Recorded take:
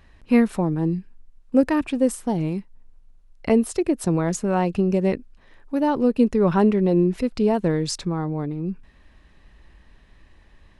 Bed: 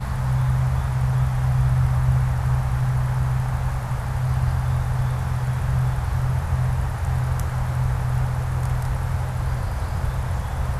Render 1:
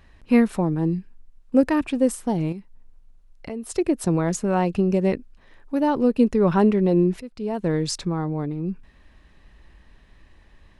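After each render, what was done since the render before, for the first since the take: 2.52–3.7 compressor 2.5:1, threshold -35 dBFS; 7.2–7.75 fade in quadratic, from -14 dB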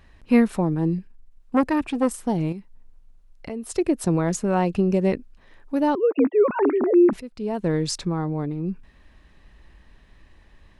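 0.98–2.19 core saturation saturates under 730 Hz; 5.95–7.13 sine-wave speech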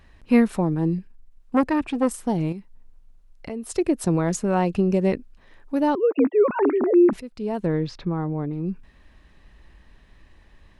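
1.64–2.07 high shelf 8900 Hz -8.5 dB; 7.66–8.53 air absorption 290 m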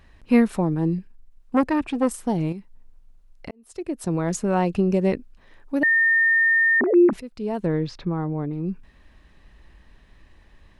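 3.51–4.41 fade in; 5.83–6.81 bleep 1820 Hz -15 dBFS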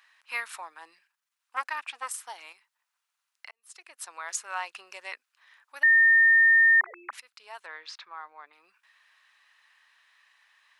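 HPF 1100 Hz 24 dB/oct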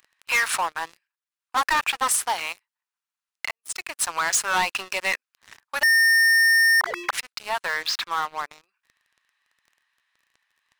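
compressor 3:1, threshold -23 dBFS, peak gain reduction 5 dB; sample leveller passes 5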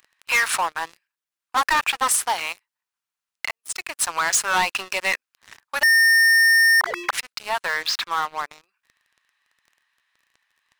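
gain +2 dB

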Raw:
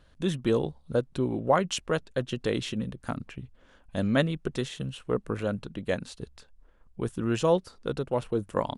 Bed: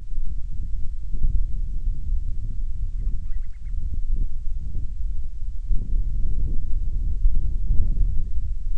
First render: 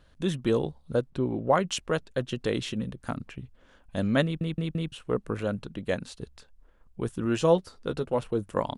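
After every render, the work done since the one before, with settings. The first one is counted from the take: 1.1–1.5 LPF 2600 Hz 6 dB/oct; 4.24 stutter in place 0.17 s, 4 plays; 7.24–8.19 doubler 12 ms -9 dB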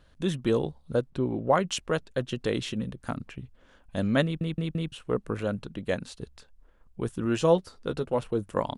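nothing audible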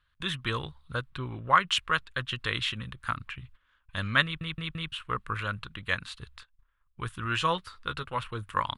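gate -50 dBFS, range -15 dB; EQ curve 110 Hz 0 dB, 210 Hz -12 dB, 430 Hz -13 dB, 750 Hz -10 dB, 1100 Hz +9 dB, 3700 Hz +7 dB, 5800 Hz -5 dB, 10000 Hz -1 dB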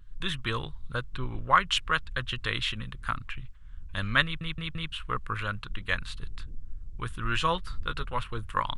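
add bed -16.5 dB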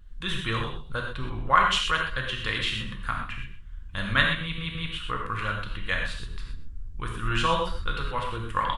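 echo 0.129 s -14 dB; non-linear reverb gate 0.14 s flat, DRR 0.5 dB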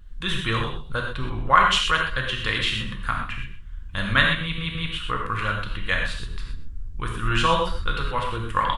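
gain +4 dB; limiter -3 dBFS, peak gain reduction 1.5 dB

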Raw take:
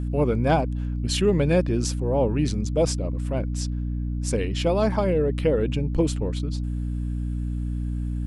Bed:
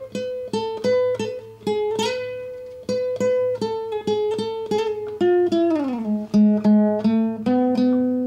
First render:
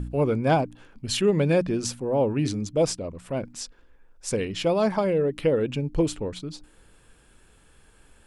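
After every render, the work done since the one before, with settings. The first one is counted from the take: de-hum 60 Hz, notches 5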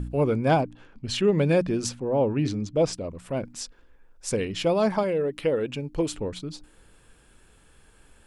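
0.63–1.38 air absorption 68 m; 1.89–2.93 air absorption 80 m; 5.03–6.14 low shelf 280 Hz -7.5 dB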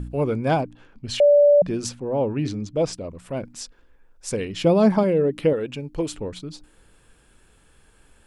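1.2–1.62 bleep 581 Hz -10.5 dBFS; 4.64–5.53 bell 200 Hz +9.5 dB 2.6 oct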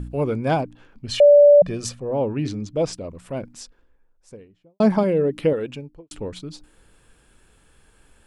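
1.11–2.11 comb 1.7 ms, depth 49%; 3.2–4.8 studio fade out; 5.64–6.11 studio fade out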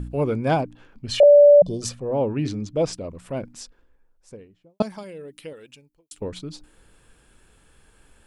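1.23–1.82 Chebyshev band-stop 980–3200 Hz, order 4; 4.82–6.22 pre-emphasis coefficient 0.9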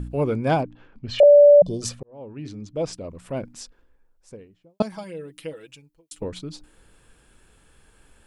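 0.63–1.19 air absorption 160 m; 2.03–3.32 fade in; 4.92–6.24 comb 6.2 ms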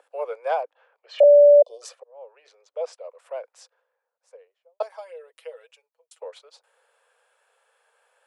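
steep high-pass 480 Hz 72 dB/oct; high shelf 2100 Hz -12 dB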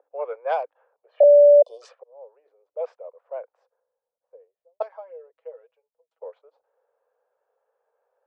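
low-pass opened by the level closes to 580 Hz, open at -16.5 dBFS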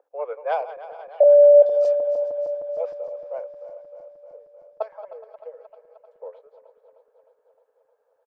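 regenerating reverse delay 0.154 s, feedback 82%, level -14 dB; echo 0.418 s -20 dB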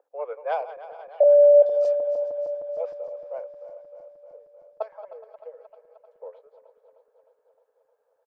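gain -2.5 dB

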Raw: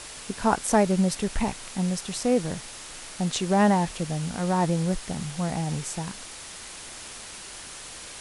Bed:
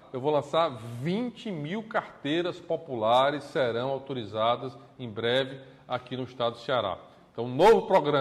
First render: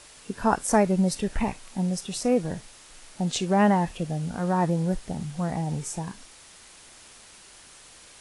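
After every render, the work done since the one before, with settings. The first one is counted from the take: noise print and reduce 9 dB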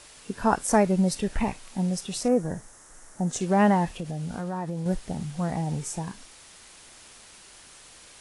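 2.28–3.41 band shelf 3300 Hz -13 dB 1.3 oct; 3.97–4.86 compressor 4:1, threshold -28 dBFS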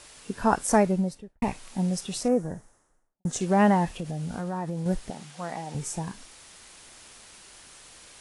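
0.75–1.42 studio fade out; 2.07–3.25 studio fade out; 5.1–5.75 weighting filter A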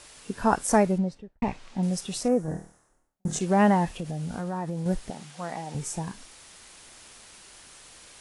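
0.98–1.83 air absorption 110 m; 2.45–3.39 flutter echo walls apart 4.4 m, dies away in 0.35 s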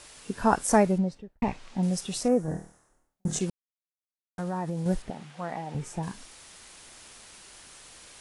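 3.5–4.38 mute; 5.02–6.03 tone controls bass 0 dB, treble -11 dB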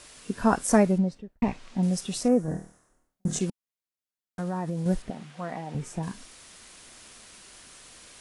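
bell 230 Hz +3.5 dB 0.65 oct; notch 850 Hz, Q 12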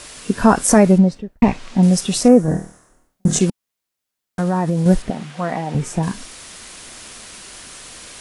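maximiser +12 dB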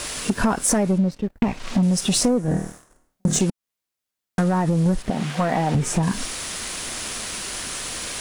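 compressor 10:1, threshold -22 dBFS, peak gain reduction 16.5 dB; sample leveller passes 2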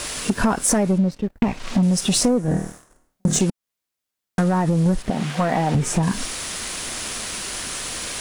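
gain +1 dB

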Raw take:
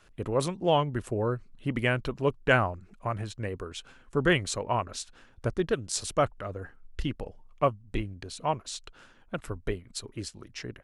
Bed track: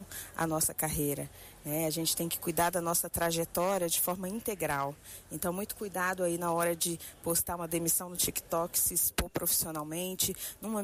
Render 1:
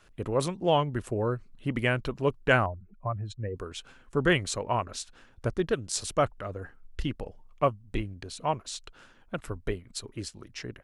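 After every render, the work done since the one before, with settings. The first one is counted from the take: 2.66–3.56 spectral contrast raised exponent 1.7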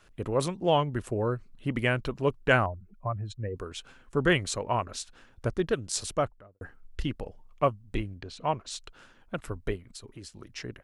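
6.03–6.61 studio fade out; 8.18–8.69 LPF 4000 Hz -> 6500 Hz; 9.76–10.39 compressor, threshold -40 dBFS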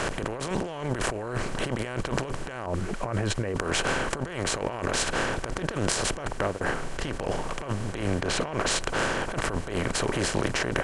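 per-bin compression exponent 0.4; negative-ratio compressor -29 dBFS, ratio -1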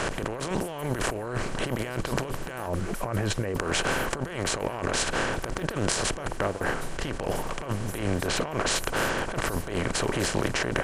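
add bed track -15 dB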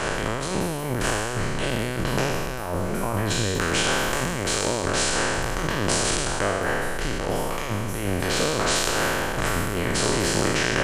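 spectral trails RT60 1.86 s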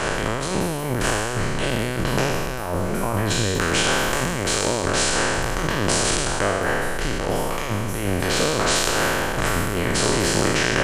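gain +2.5 dB; limiter -1 dBFS, peak gain reduction 1 dB

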